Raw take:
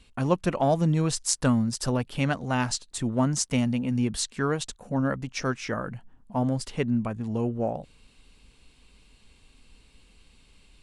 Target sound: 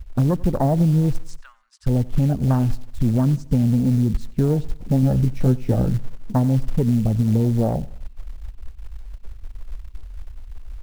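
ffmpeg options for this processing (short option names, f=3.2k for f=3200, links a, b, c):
-filter_complex "[0:a]asplit=3[a][b][c];[a]afade=t=out:st=1.4:d=0.02[d];[b]highpass=f=1.3k:w=0.5412,highpass=f=1.3k:w=1.3066,afade=t=in:st=1.4:d=0.02,afade=t=out:st=1.86:d=0.02[e];[c]afade=t=in:st=1.86:d=0.02[f];[d][e][f]amix=inputs=3:normalize=0,aemphasis=mode=reproduction:type=riaa,afwtdn=0.0631,alimiter=limit=-12dB:level=0:latency=1:release=51,acompressor=threshold=-20dB:ratio=20,acrusher=bits=7:mode=log:mix=0:aa=0.000001,asettb=1/sr,asplit=3[g][h][i];[g]atrim=end=5.014[j];[h]atrim=start=5.01:end=5.92,asetpts=PTS-STARTPTS,afade=t=in:d=0.004:c=qsin,afade=t=out:st=0.906:d=0.004:c=qsin,asplit=2[k][l];[l]adelay=16,volume=-5dB[m];[k][m]amix=inputs=2:normalize=0,atrim=end_sample=40131[n];[i]atrim=start=5.916[o];[j][n]acrossfade=d=0.004:c1=hsin:c2=qsin[p];[p][o]acrossfade=d=0.004:c1=qsin:c2=hsin,aecho=1:1:91|182|273:0.0841|0.0362|0.0156,volume=6dB"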